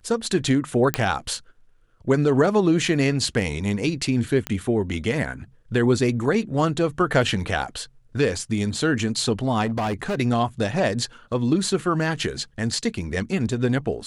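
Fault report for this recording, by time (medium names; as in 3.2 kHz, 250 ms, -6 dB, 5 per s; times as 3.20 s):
0.94 s: pop -4 dBFS
4.47 s: pop -11 dBFS
9.65–10.15 s: clipped -21 dBFS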